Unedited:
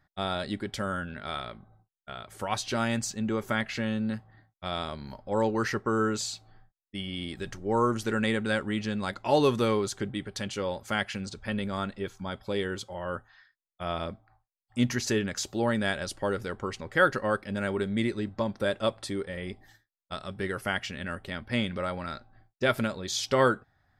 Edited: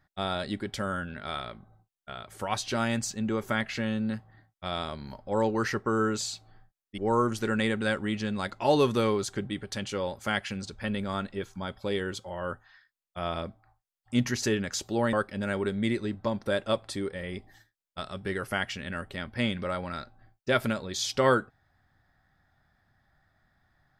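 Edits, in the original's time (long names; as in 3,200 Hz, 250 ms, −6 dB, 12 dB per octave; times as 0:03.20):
0:06.98–0:07.62: remove
0:15.77–0:17.27: remove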